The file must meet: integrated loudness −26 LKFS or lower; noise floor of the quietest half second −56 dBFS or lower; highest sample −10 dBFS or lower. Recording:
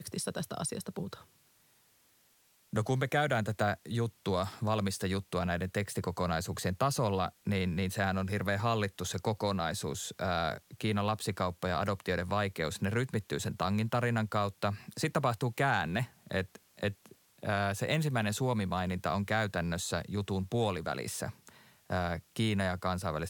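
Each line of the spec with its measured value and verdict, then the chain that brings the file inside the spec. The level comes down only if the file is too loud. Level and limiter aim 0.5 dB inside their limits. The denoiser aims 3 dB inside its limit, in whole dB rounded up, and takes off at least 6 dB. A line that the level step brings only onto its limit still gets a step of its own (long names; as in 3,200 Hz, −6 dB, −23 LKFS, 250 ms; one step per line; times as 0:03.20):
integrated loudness −33.5 LKFS: in spec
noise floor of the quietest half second −68 dBFS: in spec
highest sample −16.0 dBFS: in spec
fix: no processing needed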